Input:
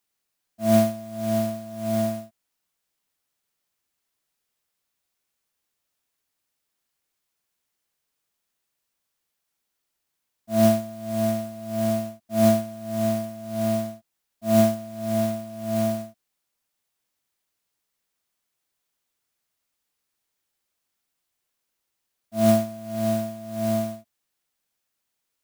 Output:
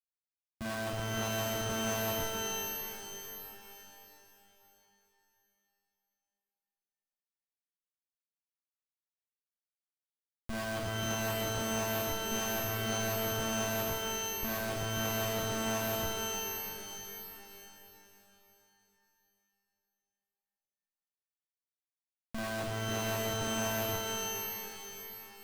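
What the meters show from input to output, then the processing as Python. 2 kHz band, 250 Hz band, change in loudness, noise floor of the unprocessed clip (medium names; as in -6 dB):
+5.5 dB, -14.5 dB, -9.5 dB, -80 dBFS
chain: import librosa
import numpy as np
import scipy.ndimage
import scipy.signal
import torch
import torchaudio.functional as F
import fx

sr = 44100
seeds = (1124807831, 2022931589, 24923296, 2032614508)

p1 = fx.cvsd(x, sr, bps=32000)
p2 = fx.rider(p1, sr, range_db=10, speed_s=0.5)
p3 = p1 + (p2 * librosa.db_to_amplitude(-1.0))
p4 = fx.schmitt(p3, sr, flips_db=-27.0)
p5 = fx.comb_fb(p4, sr, f0_hz=310.0, decay_s=1.1, harmonics='all', damping=0.0, mix_pct=80)
y = fx.rev_shimmer(p5, sr, seeds[0], rt60_s=3.0, semitones=12, shimmer_db=-2, drr_db=4.0)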